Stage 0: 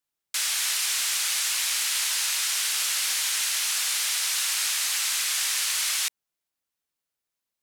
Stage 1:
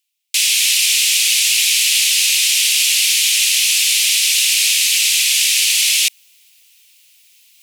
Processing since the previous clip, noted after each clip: tilt shelf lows -6.5 dB, about 920 Hz; reverse; upward compressor, threshold -35 dBFS; reverse; resonant high shelf 1900 Hz +10 dB, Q 3; gain -6 dB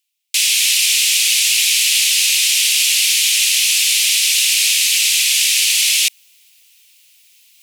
nothing audible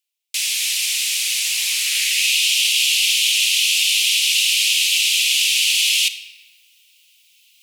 high-pass sweep 440 Hz -> 2800 Hz, 1.28–2.34; shoebox room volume 1300 m³, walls mixed, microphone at 0.6 m; gain -7 dB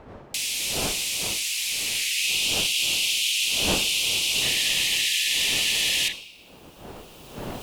recorder AGC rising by 11 dB/s; wind noise 630 Hz -32 dBFS; painted sound noise, 4.41–6.13, 1700–4100 Hz -25 dBFS; gain -7 dB

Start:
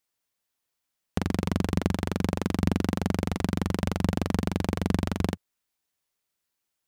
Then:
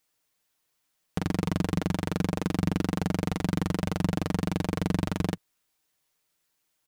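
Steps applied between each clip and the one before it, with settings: comb 6.5 ms, depth 41%; limiter -19 dBFS, peak gain reduction 10.5 dB; gain +5.5 dB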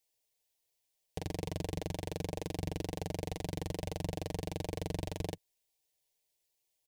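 fixed phaser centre 540 Hz, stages 4; gain -4.5 dB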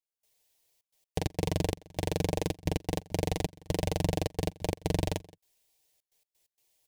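step gate "..xxxxx.x.x.xxx" 130 bpm -24 dB; gain +8.5 dB

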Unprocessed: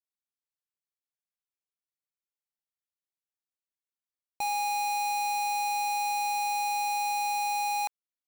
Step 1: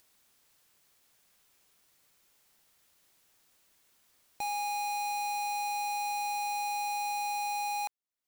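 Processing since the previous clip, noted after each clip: upward compressor, threshold -39 dBFS; gain -4 dB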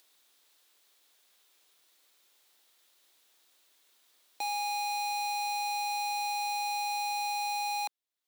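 HPF 280 Hz 24 dB/oct; bell 3700 Hz +7 dB 0.54 oct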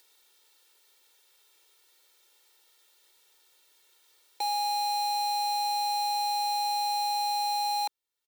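comb 2.2 ms, depth 100%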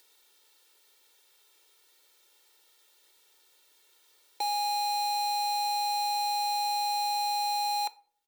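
low shelf 350 Hz +3.5 dB; shoebox room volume 430 m³, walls furnished, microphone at 0.34 m

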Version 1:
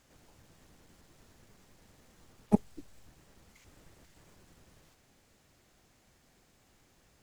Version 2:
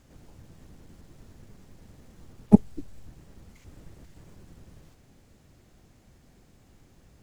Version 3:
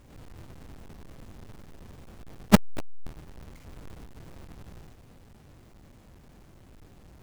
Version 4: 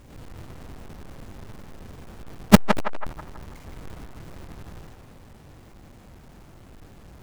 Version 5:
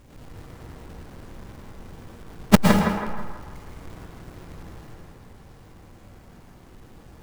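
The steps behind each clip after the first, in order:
low shelf 430 Hz +12 dB; gain +1 dB
half-waves squared off; transient shaper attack -5 dB, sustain 0 dB
narrowing echo 0.163 s, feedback 51%, band-pass 1100 Hz, level -3 dB; gain +5 dB
plate-style reverb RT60 1.1 s, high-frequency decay 0.6×, pre-delay 0.1 s, DRR 0.5 dB; gain -2.5 dB

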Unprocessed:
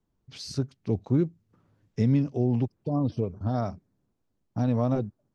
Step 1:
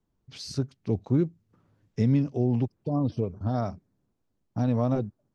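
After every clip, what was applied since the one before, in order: nothing audible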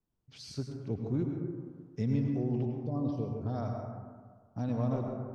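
plate-style reverb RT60 1.7 s, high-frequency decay 0.3×, pre-delay 85 ms, DRR 2 dB; gain -8.5 dB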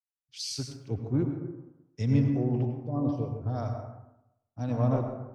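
thirty-one-band EQ 200 Hz -11 dB, 400 Hz -4 dB, 4000 Hz -4 dB; three-band expander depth 100%; gain +5.5 dB

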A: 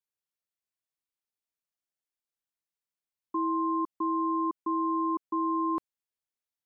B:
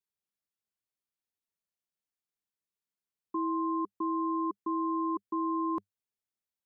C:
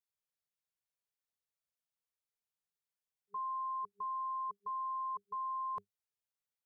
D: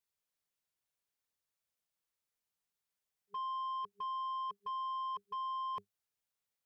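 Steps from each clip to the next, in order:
thirty-one-band EQ 100 Hz +8 dB, 200 Hz +9 dB, 400 Hz +5 dB; gain -3.5 dB
FFT band-reject 200–400 Hz; gain -3.5 dB
soft clip -38.5 dBFS, distortion -18 dB; gain +3 dB

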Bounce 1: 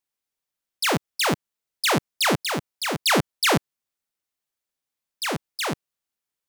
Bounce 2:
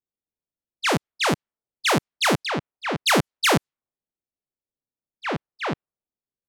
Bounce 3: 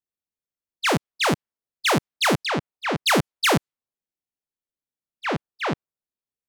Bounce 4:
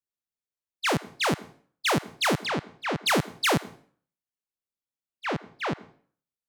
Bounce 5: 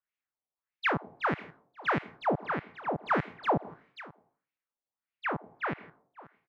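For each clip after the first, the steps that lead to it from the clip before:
low-pass opened by the level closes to 480 Hz, open at -18 dBFS; gain +1 dB
sample leveller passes 1; gain -2 dB
plate-style reverb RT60 0.5 s, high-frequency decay 0.85×, pre-delay 85 ms, DRR 20 dB; gain -4 dB
echo 0.534 s -22 dB; LFO low-pass sine 1.6 Hz 700–2400 Hz; mismatched tape noise reduction encoder only; gain -6 dB

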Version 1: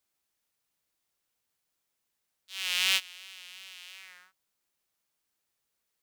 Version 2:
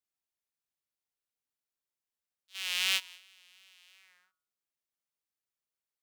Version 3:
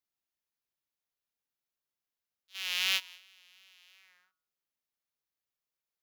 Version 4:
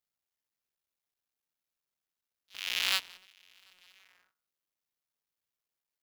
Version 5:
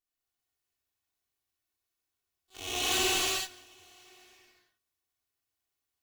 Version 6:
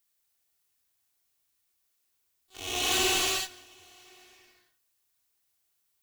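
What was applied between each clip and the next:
de-hum 159.7 Hz, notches 9; gate -44 dBFS, range -10 dB; gain -3 dB
bell 8400 Hz -14 dB 0.22 oct
cycle switcher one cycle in 3, muted; gain +1.5 dB
minimum comb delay 2.7 ms; reverb, pre-delay 13 ms, DRR -7.5 dB; gain -3 dB
added noise blue -78 dBFS; gain +2 dB

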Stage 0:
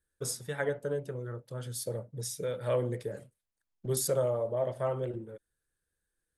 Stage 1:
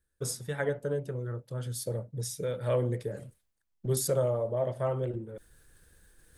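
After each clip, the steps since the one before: low shelf 210 Hz +6 dB; reverse; upward compressor, threshold -40 dBFS; reverse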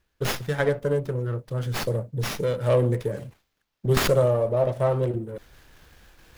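high shelf 10000 Hz +11.5 dB; running maximum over 5 samples; gain +7.5 dB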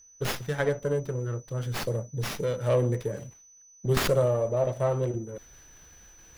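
whine 6000 Hz -49 dBFS; gain -3.5 dB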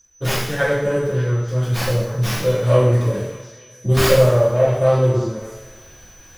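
delay with a stepping band-pass 0.293 s, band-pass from 1200 Hz, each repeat 0.7 oct, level -11 dB; two-slope reverb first 0.77 s, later 2.4 s, from -21 dB, DRR -9 dB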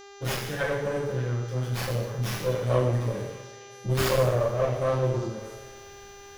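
one diode to ground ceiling -19 dBFS; buzz 400 Hz, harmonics 18, -41 dBFS -5 dB/oct; gain -6.5 dB

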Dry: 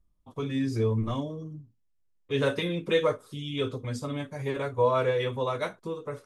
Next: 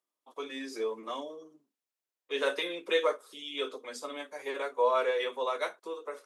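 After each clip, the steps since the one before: Bessel high-pass 520 Hz, order 6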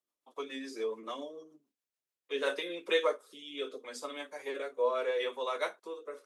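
rotary speaker horn 7 Hz, later 0.75 Hz, at 2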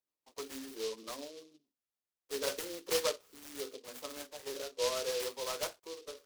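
noise-modulated delay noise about 4100 Hz, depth 0.13 ms; gain -3.5 dB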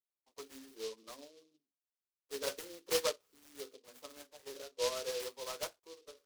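upward expander 1.5:1, over -49 dBFS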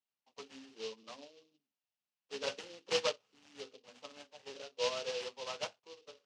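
speaker cabinet 110–6200 Hz, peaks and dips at 120 Hz +8 dB, 210 Hz +6 dB, 350 Hz -6 dB, 810 Hz +5 dB, 2800 Hz +7 dB

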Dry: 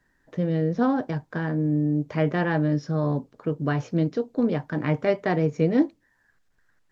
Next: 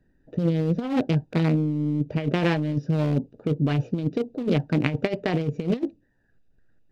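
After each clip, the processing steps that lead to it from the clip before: Wiener smoothing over 41 samples; resonant high shelf 2100 Hz +7 dB, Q 1.5; negative-ratio compressor -26 dBFS, ratio -0.5; gain +4 dB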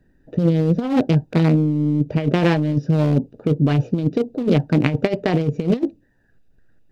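dynamic EQ 2400 Hz, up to -3 dB, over -43 dBFS, Q 0.8; gain +6 dB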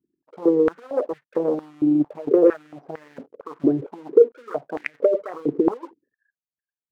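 formant sharpening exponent 3; sample leveller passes 1; stepped high-pass 4.4 Hz 340–1800 Hz; gain -6 dB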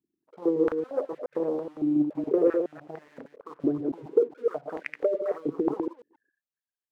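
reverse delay 0.14 s, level -4.5 dB; gain -7 dB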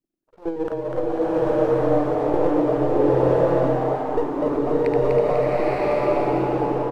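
half-wave gain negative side -7 dB; frequency-shifting echo 0.247 s, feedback 49%, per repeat +130 Hz, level -4 dB; bloom reverb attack 0.98 s, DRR -8.5 dB

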